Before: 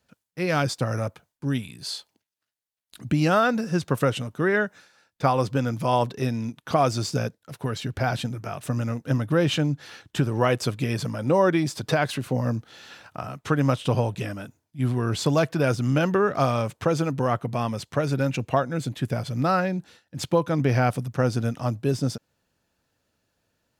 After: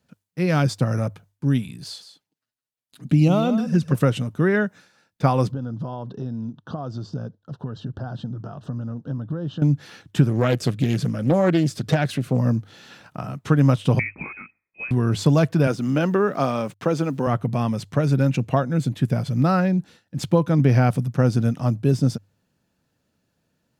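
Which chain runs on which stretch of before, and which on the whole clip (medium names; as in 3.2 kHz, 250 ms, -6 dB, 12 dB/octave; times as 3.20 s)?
1.84–3.95 s: touch-sensitive flanger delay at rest 8.3 ms, full sweep at -17 dBFS + delay 160 ms -11 dB
5.52–9.62 s: compression 3:1, threshold -33 dBFS + Butterworth band-stop 2.2 kHz, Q 1.5 + distance through air 200 m
10.29–12.39 s: peaking EQ 920 Hz -14.5 dB 0.25 oct + loudspeaker Doppler distortion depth 0.38 ms
13.99–14.91 s: steep high-pass 260 Hz + frequency inversion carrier 2.8 kHz
15.67–17.27 s: high-pass 220 Hz + treble shelf 8.3 kHz -4.5 dB + word length cut 10-bit, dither none
whole clip: peaking EQ 170 Hz +9 dB 1.8 oct; hum notches 50/100 Hz; trim -1 dB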